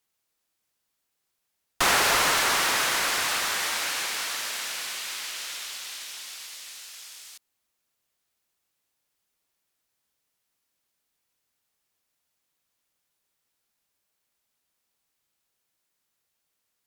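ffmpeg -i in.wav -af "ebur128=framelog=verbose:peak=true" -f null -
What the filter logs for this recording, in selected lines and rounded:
Integrated loudness:
  I:         -24.6 LUFS
  Threshold: -35.8 LUFS
Loudness range:
  LRA:        19.5 LU
  Threshold: -47.4 LUFS
  LRA low:   -42.7 LUFS
  LRA high:  -23.2 LUFS
True peak:
  Peak:      -10.9 dBFS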